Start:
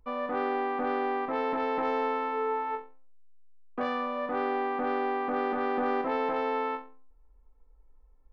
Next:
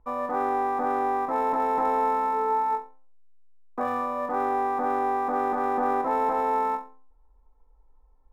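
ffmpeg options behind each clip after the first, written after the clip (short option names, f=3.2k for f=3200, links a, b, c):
-filter_complex "[0:a]equalizer=f=900:t=o:w=0.79:g=8.5,acrossover=split=2300[a][b];[b]acrusher=samples=29:mix=1:aa=0.000001[c];[a][c]amix=inputs=2:normalize=0"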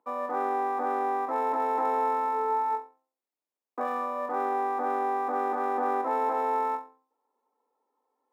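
-af "highpass=f=260:w=0.5412,highpass=f=260:w=1.3066,volume=-2.5dB"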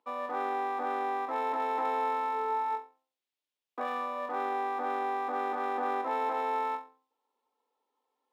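-af "equalizer=f=3.2k:t=o:w=1.3:g=13,volume=-5dB"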